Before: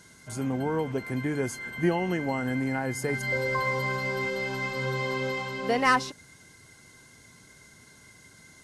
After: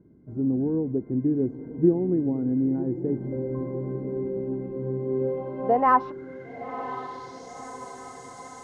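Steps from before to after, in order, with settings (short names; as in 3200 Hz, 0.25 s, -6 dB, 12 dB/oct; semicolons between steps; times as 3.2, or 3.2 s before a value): low-pass sweep 330 Hz -> 7700 Hz, 5.03–7.68; diffused feedback echo 1.02 s, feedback 56%, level -12.5 dB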